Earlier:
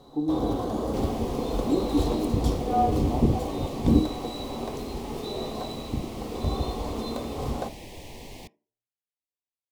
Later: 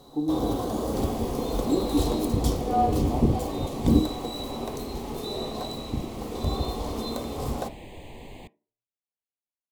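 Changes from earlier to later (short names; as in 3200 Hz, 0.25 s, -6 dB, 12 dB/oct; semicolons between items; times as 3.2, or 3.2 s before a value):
second sound: add running mean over 8 samples; master: add high shelf 5800 Hz +10.5 dB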